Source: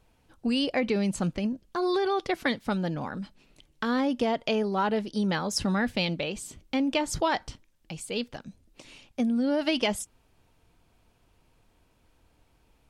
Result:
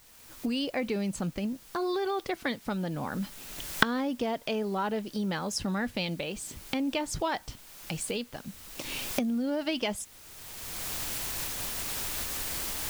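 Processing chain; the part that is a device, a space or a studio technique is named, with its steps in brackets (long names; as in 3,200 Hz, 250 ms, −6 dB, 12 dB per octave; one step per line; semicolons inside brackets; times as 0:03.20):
cheap recorder with automatic gain (white noise bed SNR 24 dB; camcorder AGC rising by 24 dB per second)
level −4.5 dB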